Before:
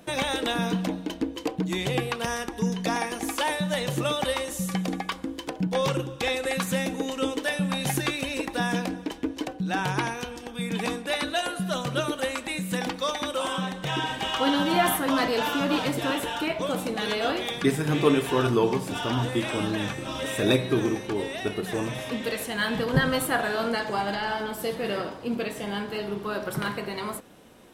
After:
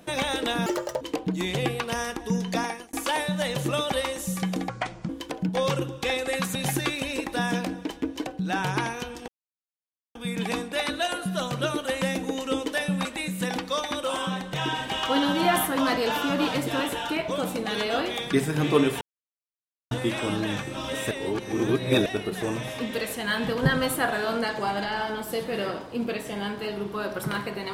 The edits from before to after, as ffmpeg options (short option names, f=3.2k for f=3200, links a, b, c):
-filter_complex "[0:a]asplit=14[a][b][c][d][e][f][g][h][i][j][k][l][m][n];[a]atrim=end=0.664[o];[b]atrim=start=0.66:end=1.33,asetpts=PTS-STARTPTS,asetrate=84231,aresample=44100[p];[c]atrim=start=1.326:end=3.25,asetpts=PTS-STARTPTS,afade=t=out:st=1.574:d=0.35[q];[d]atrim=start=3.25:end=5.014,asetpts=PTS-STARTPTS,afade=t=in:d=0.004:c=hsin[r];[e]atrim=start=5.01:end=5.27,asetpts=PTS-STARTPTS,asetrate=28665,aresample=44100[s];[f]atrim=start=5.266:end=6.732[t];[g]atrim=start=7.758:end=10.49,asetpts=PTS-STARTPTS,afade=t=out:st=2.728:d=0.004:c=hsin,apad=pad_dur=0.87[u];[h]atrim=start=10.49:end=12.362,asetpts=PTS-STARTPTS,afade=t=in:d=0.004:c=hsin[v];[i]atrim=start=6.728:end=7.762[w];[j]atrim=start=12.358:end=18.32,asetpts=PTS-STARTPTS,afade=t=out:st=5.958:d=0.004:c=hsin[x];[k]atrim=start=18.32:end=19.22,asetpts=PTS-STARTPTS,volume=0[y];[l]atrim=start=19.22:end=20.422,asetpts=PTS-STARTPTS,afade=t=in:d=0.004:c=hsin[z];[m]atrim=start=20.418:end=21.372,asetpts=PTS-STARTPTS,areverse[aa];[n]atrim=start=21.368[ab];[o][p]acrossfade=d=0.004:c1=hsin:c2=hsin[ac];[q][r]concat=n=2:v=0:a=1[ad];[ac][ad]acrossfade=d=0.004:c1=hsin:c2=hsin[ae];[ae][s]acrossfade=d=0.004:c1=hsin:c2=hsin[af];[af][t]acrossfade=d=0.004:c1=hsin:c2=hsin[ag];[u][v]concat=n=2:v=0:a=1[ah];[ag][ah]acrossfade=d=0.004:c1=hsin:c2=hsin[ai];[ai][w]acrossfade=d=0.004:c1=hsin:c2=hsin[aj];[x][y][z]concat=n=3:v=0:a=1[ak];[aj][ak]acrossfade=d=0.004:c1=hsin:c2=hsin[al];[al][aa]acrossfade=d=0.004:c1=hsin:c2=hsin[am];[am][ab]acrossfade=d=0.004:c1=hsin:c2=hsin"